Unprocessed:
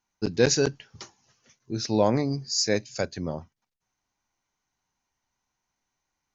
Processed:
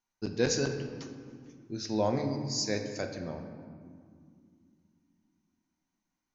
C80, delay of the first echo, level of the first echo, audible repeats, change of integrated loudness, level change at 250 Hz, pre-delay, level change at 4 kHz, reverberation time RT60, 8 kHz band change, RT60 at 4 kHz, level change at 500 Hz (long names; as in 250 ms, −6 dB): 8.0 dB, no echo audible, no echo audible, no echo audible, −7.0 dB, −5.0 dB, 3 ms, −7.0 dB, 2.3 s, can't be measured, 1.2 s, −6.5 dB